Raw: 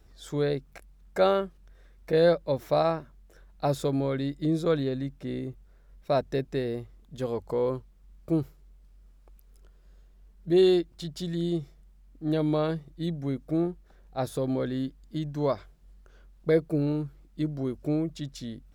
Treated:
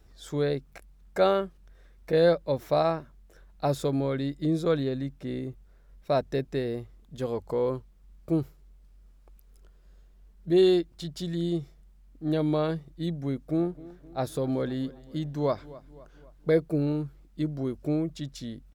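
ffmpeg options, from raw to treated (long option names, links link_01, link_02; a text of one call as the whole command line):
ffmpeg -i in.wav -filter_complex "[0:a]asplit=3[link_01][link_02][link_03];[link_01]afade=type=out:start_time=13.57:duration=0.02[link_04];[link_02]asplit=2[link_05][link_06];[link_06]adelay=258,lowpass=frequency=3700:poles=1,volume=-19dB,asplit=2[link_07][link_08];[link_08]adelay=258,lowpass=frequency=3700:poles=1,volume=0.54,asplit=2[link_09][link_10];[link_10]adelay=258,lowpass=frequency=3700:poles=1,volume=0.54,asplit=2[link_11][link_12];[link_12]adelay=258,lowpass=frequency=3700:poles=1,volume=0.54[link_13];[link_05][link_07][link_09][link_11][link_13]amix=inputs=5:normalize=0,afade=type=in:start_time=13.57:duration=0.02,afade=type=out:start_time=16.62:duration=0.02[link_14];[link_03]afade=type=in:start_time=16.62:duration=0.02[link_15];[link_04][link_14][link_15]amix=inputs=3:normalize=0" out.wav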